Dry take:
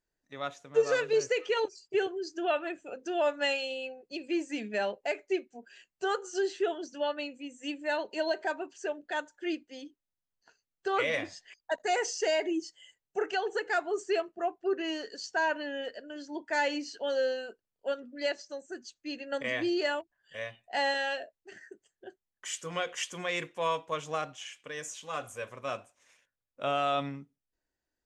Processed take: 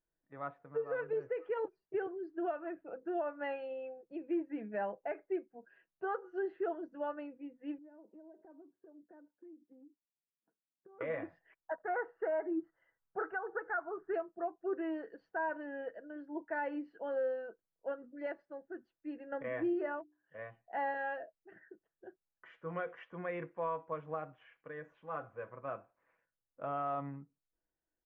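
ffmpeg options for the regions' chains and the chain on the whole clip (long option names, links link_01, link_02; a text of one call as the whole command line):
ffmpeg -i in.wav -filter_complex "[0:a]asettb=1/sr,asplit=3[link_01][link_02][link_03];[link_01]atrim=end=7.784[link_04];[link_02]atrim=start=7.78:end=11.01,asetpts=PTS-STARTPTS,afade=type=in:duration=0.004:curve=qsin,afade=type=out:start_time=3.226:duration=0.004:curve=qsin,bandpass=frequency=240:width_type=q:width=2.3,acompressor=threshold=-49dB:ratio=12:attack=3.2:release=140:knee=1:detection=peak[link_05];[link_03]atrim=start=11.006[link_06];[link_04][link_05]acrossfade=duration=0.004:curve1=hsin:curve2=qsin[link_07];[link_07][link_06]acrossfade=duration=0.004:curve1=qsin:curve2=hsin,asettb=1/sr,asplit=3[link_08][link_09][link_10];[link_08]atrim=end=11.724[link_11];[link_09]atrim=start=11.72:end=14.14,asetpts=PTS-STARTPTS,afade=type=in:duration=0.004:curve=qsin,afade=type=out:start_time=2.416:duration=0.004:curve=qsin,lowpass=frequency=1400:width_type=q:width=3.2,asubboost=boost=3.5:cutoff=140[link_12];[link_10]atrim=start=14.136[link_13];[link_11][link_12]acrossfade=duration=0.004:curve1=hsin:curve2=qsin[link_14];[link_14][link_13]acrossfade=duration=0.004:curve1=qsin:curve2=hsin,asettb=1/sr,asplit=3[link_15][link_16][link_17];[link_15]atrim=end=19.734[link_18];[link_16]atrim=start=19.73:end=20.39,asetpts=PTS-STARTPTS,afade=type=in:duration=0.004:curve=qsin,afade=type=out:start_time=0.656:duration=0.004:curve=qsin,highpass=51,highshelf=frequency=3300:gain=-8,bandreject=frequency=60:width_type=h:width=6,bandreject=frequency=120:width_type=h:width=6,bandreject=frequency=180:width_type=h:width=6,bandreject=frequency=240:width_type=h:width=6,bandreject=frequency=300:width_type=h:width=6,bandreject=frequency=360:width_type=h:width=6[link_19];[link_17]atrim=start=20.386[link_20];[link_18][link_19]acrossfade=duration=0.004:curve1=hsin:curve2=qsin[link_21];[link_21][link_20]acrossfade=duration=0.004:curve1=qsin:curve2=hsin,lowpass=frequency=1600:width=0.5412,lowpass=frequency=1600:width=1.3066,aecho=1:1:6.1:0.37,alimiter=limit=-23dB:level=0:latency=1:release=278,volume=-4.5dB" out.wav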